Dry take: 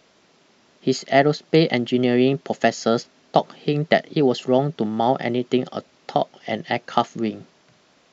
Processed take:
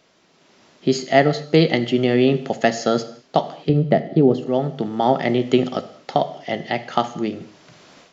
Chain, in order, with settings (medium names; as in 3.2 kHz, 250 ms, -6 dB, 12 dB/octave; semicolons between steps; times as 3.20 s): 3.69–4.46 s: tilt shelf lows +10 dB; level rider gain up to 13.5 dB; gated-style reverb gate 260 ms falling, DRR 10.5 dB; trim -2 dB